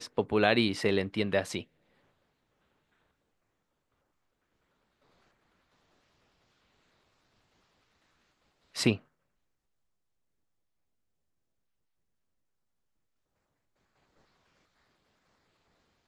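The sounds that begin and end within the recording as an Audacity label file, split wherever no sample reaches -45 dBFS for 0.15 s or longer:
8.750000	8.980000	sound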